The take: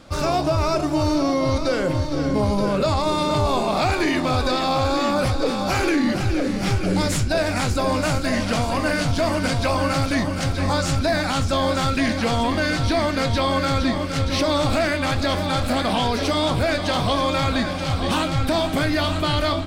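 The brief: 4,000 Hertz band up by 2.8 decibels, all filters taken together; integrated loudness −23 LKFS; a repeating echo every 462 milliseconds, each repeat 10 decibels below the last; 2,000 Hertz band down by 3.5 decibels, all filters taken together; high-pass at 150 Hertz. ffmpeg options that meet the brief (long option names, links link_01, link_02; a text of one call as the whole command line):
ffmpeg -i in.wav -af "highpass=150,equalizer=frequency=2000:width_type=o:gain=-6,equalizer=frequency=4000:width_type=o:gain=5,aecho=1:1:462|924|1386|1848:0.316|0.101|0.0324|0.0104,volume=-1.5dB" out.wav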